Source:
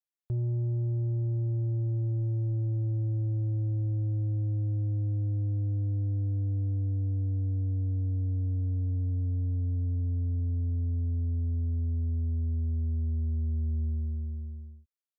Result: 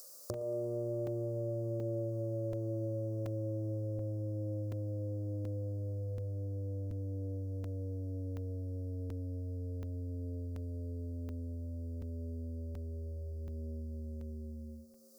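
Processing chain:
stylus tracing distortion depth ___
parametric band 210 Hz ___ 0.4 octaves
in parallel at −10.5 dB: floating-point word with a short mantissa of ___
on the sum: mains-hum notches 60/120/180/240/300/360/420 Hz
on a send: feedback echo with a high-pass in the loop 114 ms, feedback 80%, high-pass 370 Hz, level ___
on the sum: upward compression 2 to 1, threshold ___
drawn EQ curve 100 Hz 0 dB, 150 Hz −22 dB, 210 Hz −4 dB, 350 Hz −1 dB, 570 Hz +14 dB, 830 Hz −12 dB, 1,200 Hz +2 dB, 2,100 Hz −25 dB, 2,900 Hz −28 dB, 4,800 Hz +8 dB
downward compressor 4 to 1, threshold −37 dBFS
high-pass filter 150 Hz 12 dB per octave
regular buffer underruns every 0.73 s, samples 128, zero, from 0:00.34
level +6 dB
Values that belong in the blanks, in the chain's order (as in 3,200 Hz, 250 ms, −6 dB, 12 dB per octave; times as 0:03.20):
0.074 ms, +4 dB, 6 bits, −11.5 dB, −36 dBFS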